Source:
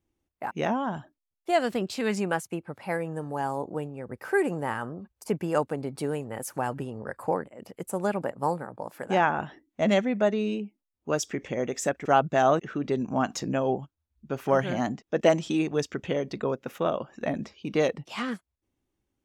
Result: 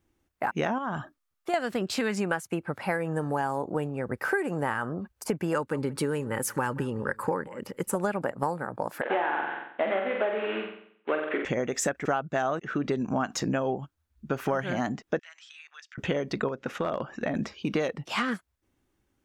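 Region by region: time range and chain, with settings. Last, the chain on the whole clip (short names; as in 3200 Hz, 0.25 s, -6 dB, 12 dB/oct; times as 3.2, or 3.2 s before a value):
0.78–1.54 bell 1200 Hz +9.5 dB 0.2 oct + compressor 3:1, threshold -35 dBFS
5.53–7.95 Butterworth band-stop 690 Hz, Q 3.3 + echo 0.176 s -23.5 dB
9.01–11.45 CVSD 16 kbps + HPF 310 Hz 24 dB/oct + flutter echo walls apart 7.8 m, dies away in 0.63 s
15.19–15.98 HPF 1500 Hz 24 dB/oct + compressor 2.5:1, threshold -59 dBFS + air absorption 82 m
16.48–17.35 LPF 6800 Hz + compressor 4:1, threshold -30 dBFS + hard clip -25 dBFS
whole clip: bell 1500 Hz +5.5 dB 0.85 oct; compressor 10:1, threshold -30 dBFS; gain +6 dB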